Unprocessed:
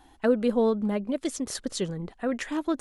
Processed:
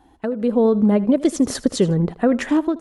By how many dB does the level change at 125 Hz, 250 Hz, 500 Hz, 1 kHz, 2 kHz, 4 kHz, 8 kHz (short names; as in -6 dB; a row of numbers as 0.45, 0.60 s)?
+13.5, +10.5, +7.0, +6.0, +5.0, +5.0, +5.0 dB